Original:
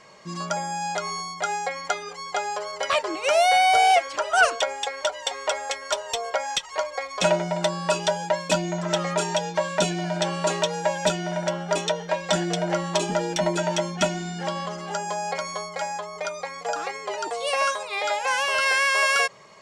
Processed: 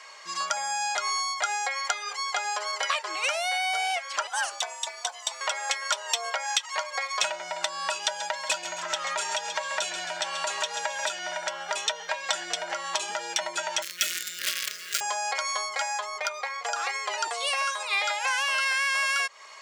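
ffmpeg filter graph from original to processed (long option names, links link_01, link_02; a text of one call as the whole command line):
ffmpeg -i in.wav -filter_complex "[0:a]asettb=1/sr,asplit=3[link_01][link_02][link_03];[link_01]atrim=end=4.274[link_04];[link_02]atrim=start=4.27:end=5.41,asetpts=PTS-STARTPTS,afade=type=in:duration=0.004:curve=qsin,afade=type=out:start_time=1.136:duration=0.004:curve=qsin,equalizer=frequency=1600:width=0.49:gain=-11.5,tremolo=f=240:d=0.571,afreqshift=110[link_05];[link_03]atrim=start=5.406[link_06];[link_04][link_05]acrossfade=duration=0.004:curve1=hsin:curve2=qsin[link_07];[link_07][link_06]acrossfade=duration=0.004:curve1=qsin:curve2=hsin,asettb=1/sr,asplit=3[link_08][link_09][link_10];[link_08]atrim=end=8.014[link_11];[link_09]atrim=start=8.01:end=11.19,asetpts=PTS-STARTPTS,afade=type=in:duration=0.004:curve=qsin,afade=type=out:start_time=3.176:duration=0.004:curve=qsin,aeval=exprs='val(0)+0.00891*(sin(2*PI*60*n/s)+sin(2*PI*2*60*n/s)/2+sin(2*PI*3*60*n/s)/3+sin(2*PI*4*60*n/s)/4+sin(2*PI*5*60*n/s)/5)':channel_layout=same,aecho=1:1:134|268|402|536|670:0.237|0.121|0.0617|0.0315|0.016,atrim=end_sample=140238[link_12];[link_10]atrim=start=11.186[link_13];[link_11][link_12]acrossfade=duration=0.004:curve1=hsin:curve2=qsin[link_14];[link_14][link_13]acrossfade=duration=0.004:curve1=qsin:curve2=hsin,asettb=1/sr,asplit=3[link_15][link_16][link_17];[link_15]atrim=end=13.824[link_18];[link_16]atrim=start=13.82:end=15.01,asetpts=PTS-STARTPTS,afade=type=in:duration=0.004:curve=qsin,afade=type=out:start_time=1.186:duration=0.004:curve=qsin,asubboost=boost=8.5:cutoff=120,acrusher=bits=5:dc=4:mix=0:aa=0.000001,asuperstop=centerf=840:order=4:qfactor=0.69[link_19];[link_17]atrim=start=15.006[link_20];[link_18][link_19]acrossfade=duration=0.004:curve1=hsin:curve2=qsin[link_21];[link_21][link_20]acrossfade=duration=0.004:curve1=qsin:curve2=hsin,asettb=1/sr,asplit=3[link_22][link_23][link_24];[link_22]atrim=end=16.184[link_25];[link_23]atrim=start=16.18:end=16.64,asetpts=PTS-STARTPTS,afade=type=in:duration=0.004:curve=qsin,afade=type=out:start_time=0.456:duration=0.004:curve=qsin,aemphasis=mode=production:type=cd,adynamicsmooth=sensitivity=1.5:basefreq=2700[link_26];[link_24]atrim=start=16.636[link_27];[link_25][link_26]acrossfade=duration=0.004:curve1=hsin:curve2=qsin[link_28];[link_28][link_27]acrossfade=duration=0.004:curve1=qsin:curve2=hsin,acompressor=threshold=-27dB:ratio=12,highpass=1100,acontrast=42,volume=1dB" out.wav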